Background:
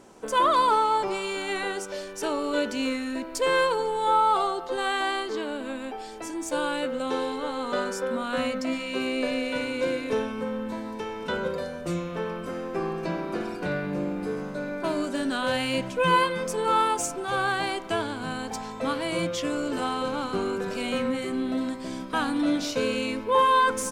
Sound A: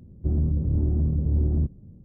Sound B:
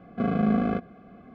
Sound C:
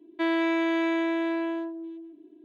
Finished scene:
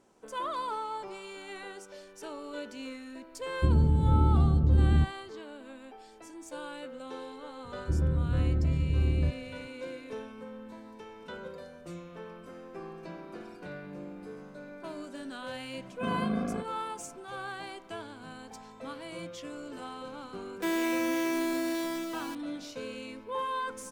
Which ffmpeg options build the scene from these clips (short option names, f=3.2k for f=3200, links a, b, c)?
-filter_complex "[1:a]asplit=2[a][b];[0:a]volume=-13.5dB[c];[a]agate=range=-33dB:threshold=-35dB:ratio=3:release=100:detection=peak[d];[b]bandreject=f=230:w=6.2[e];[3:a]acrusher=bits=5:mix=0:aa=0.000001[f];[d]atrim=end=2.04,asetpts=PTS-STARTPTS,afade=t=in:d=0.004:c=hsin,afade=t=out:st=2.036:d=0.004:c=hsin,adelay=3380[g];[e]atrim=end=2.04,asetpts=PTS-STARTPTS,volume=-4dB,afade=t=in:d=0.004:c=hsin,afade=t=out:st=2.036:d=0.004:c=hsin,adelay=7640[h];[2:a]atrim=end=1.34,asetpts=PTS-STARTPTS,volume=-8dB,afade=t=in:d=0.004:c=hsin,afade=t=out:st=1.336:d=0.004:c=hsin,adelay=15830[i];[f]atrim=end=2.44,asetpts=PTS-STARTPTS,volume=-4.5dB,afade=t=in:d=0.004:c=hsin,afade=t=out:st=2.436:d=0.004:c=hsin,adelay=20430[j];[c][g][h][i][j]amix=inputs=5:normalize=0"